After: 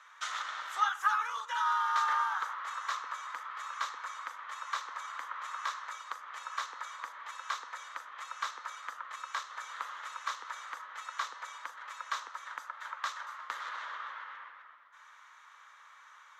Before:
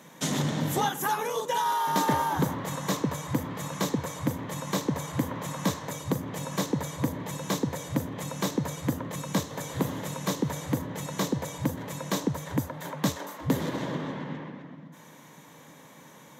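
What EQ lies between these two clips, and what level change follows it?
four-pole ladder high-pass 1,200 Hz, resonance 75%
low-pass filter 5,200 Hz 12 dB per octave
+5.5 dB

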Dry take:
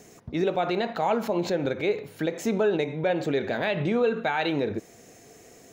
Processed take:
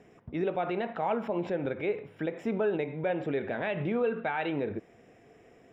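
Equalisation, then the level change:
Savitzky-Golay smoothing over 25 samples
−5.0 dB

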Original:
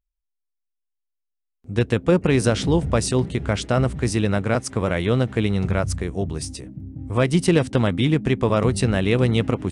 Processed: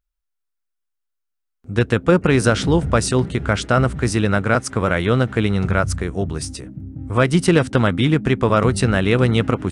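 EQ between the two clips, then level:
parametric band 1,400 Hz +7.5 dB 0.56 octaves
+2.5 dB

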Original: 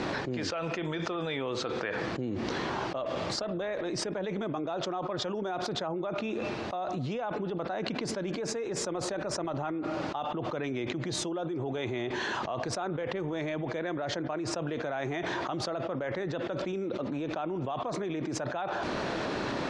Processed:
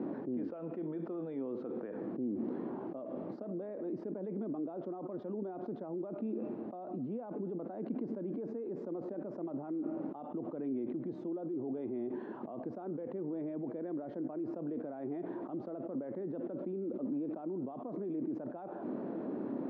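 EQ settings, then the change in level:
four-pole ladder band-pass 290 Hz, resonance 45%
+6.0 dB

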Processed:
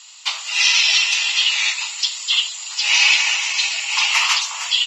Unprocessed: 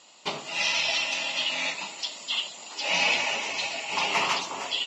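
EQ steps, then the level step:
high-pass filter 990 Hz 24 dB per octave
high-shelf EQ 2,300 Hz +11.5 dB
+3.5 dB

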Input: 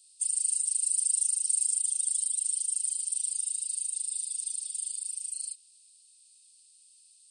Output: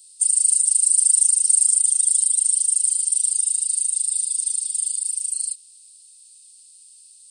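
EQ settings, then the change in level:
spectral tilt +3.5 dB per octave
0.0 dB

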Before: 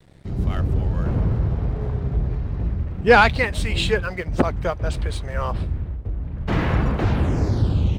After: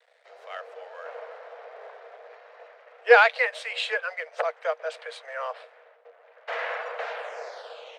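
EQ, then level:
Chebyshev high-pass with heavy ripple 460 Hz, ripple 6 dB
high-frequency loss of the air 54 metres
0.0 dB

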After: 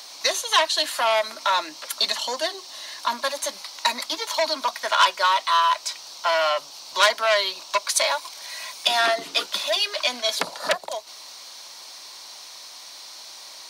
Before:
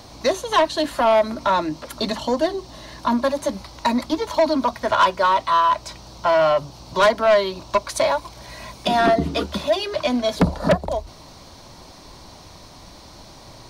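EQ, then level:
high-pass filter 470 Hz 12 dB per octave
tilt shelving filter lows −9.5 dB, about 1,200 Hz
−1.0 dB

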